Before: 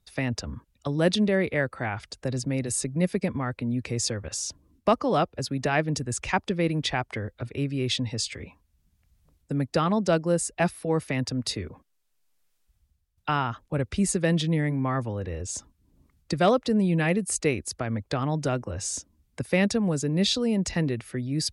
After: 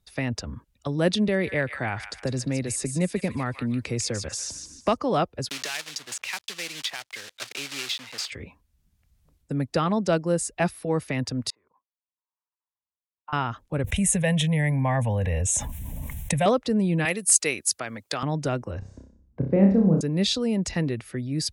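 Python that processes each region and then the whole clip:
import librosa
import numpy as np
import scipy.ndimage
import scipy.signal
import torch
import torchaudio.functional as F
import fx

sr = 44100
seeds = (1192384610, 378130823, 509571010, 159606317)

y = fx.chain(x, sr, fx.echo_wet_highpass(ms=151, feedback_pct=31, hz=1500.0, wet_db=-7.5),
    fx.band_squash(depth_pct=40), at=(1.28, 4.97))
y = fx.chain(y, sr, fx.block_float(bits=3),
    fx.bandpass_q(hz=4200.0, q=0.73),
    fx.band_squash(depth_pct=100), at=(5.49, 8.32))
y = fx.chain(y, sr, fx.level_steps(step_db=14),
    fx.bandpass_q(hz=1000.0, q=7.7), at=(11.5, 13.33))
y = fx.chain(y, sr, fx.high_shelf(hz=6200.0, db=9.0),
    fx.fixed_phaser(hz=1300.0, stages=6),
    fx.env_flatten(amount_pct=70), at=(13.84, 16.46))
y = fx.chain(y, sr, fx.highpass(hz=110.0, slope=12),
    fx.tilt_eq(slope=3.5), at=(17.05, 18.23))
y = fx.chain(y, sr, fx.bessel_lowpass(hz=650.0, order=2),
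    fx.low_shelf(hz=390.0, db=5.5),
    fx.room_flutter(wall_m=5.3, rt60_s=0.49), at=(18.79, 20.01))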